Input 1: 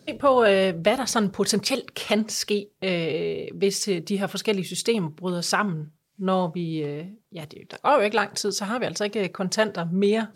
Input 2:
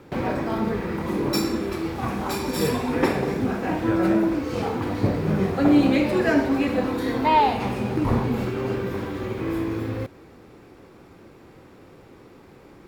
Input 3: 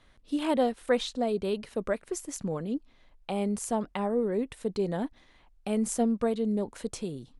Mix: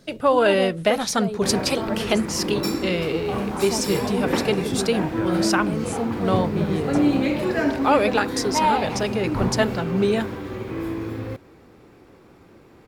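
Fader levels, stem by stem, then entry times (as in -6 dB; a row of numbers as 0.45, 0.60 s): +0.5, -2.0, -2.0 dB; 0.00, 1.30, 0.00 s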